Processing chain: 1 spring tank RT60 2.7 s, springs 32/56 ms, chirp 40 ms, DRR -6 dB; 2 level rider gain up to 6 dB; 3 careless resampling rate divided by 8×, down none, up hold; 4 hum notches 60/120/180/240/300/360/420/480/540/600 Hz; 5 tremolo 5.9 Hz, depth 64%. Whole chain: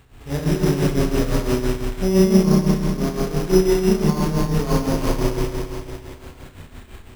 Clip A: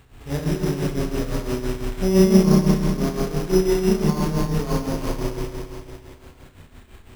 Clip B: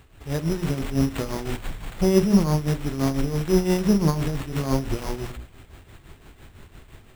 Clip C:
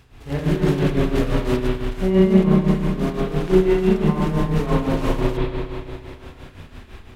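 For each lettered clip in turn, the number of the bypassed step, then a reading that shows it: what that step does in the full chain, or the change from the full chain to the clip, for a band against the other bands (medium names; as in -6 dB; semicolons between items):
2, crest factor change +2.0 dB; 1, momentary loudness spread change -1 LU; 3, 4 kHz band -3.5 dB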